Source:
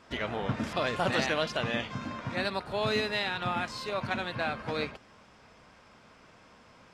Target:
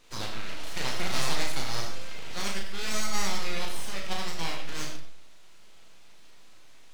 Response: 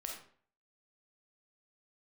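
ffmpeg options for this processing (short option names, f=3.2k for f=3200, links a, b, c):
-filter_complex "[0:a]highpass=760,tiltshelf=f=970:g=-3.5,aeval=exprs='abs(val(0))':c=same,asplit=2[a][b];[1:a]atrim=start_sample=2205,adelay=36[c];[b][c]afir=irnorm=-1:irlink=0,volume=0.5dB[d];[a][d]amix=inputs=2:normalize=0"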